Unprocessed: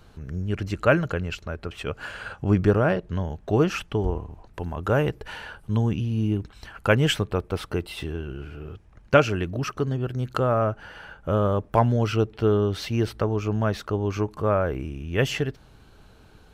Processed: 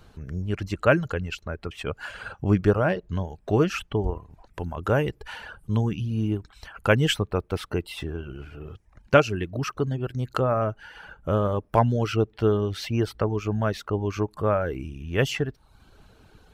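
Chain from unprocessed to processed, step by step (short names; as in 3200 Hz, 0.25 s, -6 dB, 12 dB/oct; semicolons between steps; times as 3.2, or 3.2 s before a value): reverb removal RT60 0.59 s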